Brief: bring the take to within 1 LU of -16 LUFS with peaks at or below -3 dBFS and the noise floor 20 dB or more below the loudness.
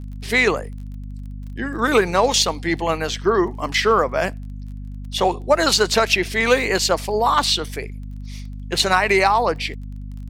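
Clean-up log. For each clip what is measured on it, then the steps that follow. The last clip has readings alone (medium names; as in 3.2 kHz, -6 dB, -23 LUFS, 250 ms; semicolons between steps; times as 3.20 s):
tick rate 21 per s; hum 50 Hz; highest harmonic 250 Hz; hum level -29 dBFS; loudness -19.0 LUFS; peak level -3.5 dBFS; loudness target -16.0 LUFS
-> de-click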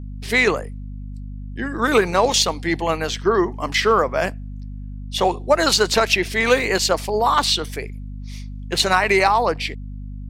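tick rate 0.39 per s; hum 50 Hz; highest harmonic 250 Hz; hum level -29 dBFS
-> de-hum 50 Hz, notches 5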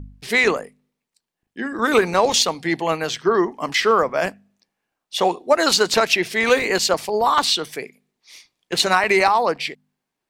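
hum not found; loudness -19.0 LUFS; peak level -4.0 dBFS; loudness target -16.0 LUFS
-> trim +3 dB; peak limiter -3 dBFS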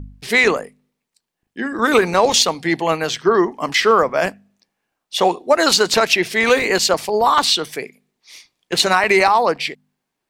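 loudness -16.5 LUFS; peak level -3.0 dBFS; noise floor -79 dBFS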